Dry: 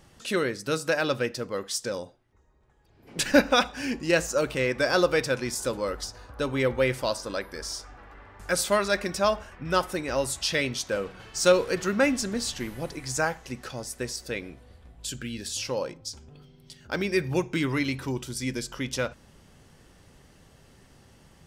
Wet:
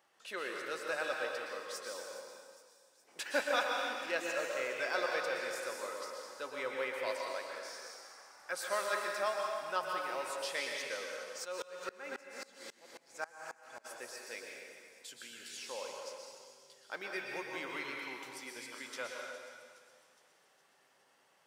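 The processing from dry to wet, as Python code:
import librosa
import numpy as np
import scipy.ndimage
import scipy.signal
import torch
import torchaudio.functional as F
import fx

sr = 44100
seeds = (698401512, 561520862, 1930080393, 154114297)

y = scipy.signal.sosfilt(scipy.signal.butter(2, 710.0, 'highpass', fs=sr, output='sos'), x)
y = fx.peak_eq(y, sr, hz=7700.0, db=-8.5, octaves=2.7)
y = fx.echo_wet_highpass(y, sr, ms=414, feedback_pct=59, hz=5600.0, wet_db=-12.5)
y = fx.rev_plate(y, sr, seeds[0], rt60_s=1.9, hf_ratio=1.0, predelay_ms=105, drr_db=-0.5)
y = fx.tremolo_decay(y, sr, direction='swelling', hz=3.7, depth_db=25, at=(11.44, 13.84), fade=0.02)
y = y * librosa.db_to_amplitude(-8.0)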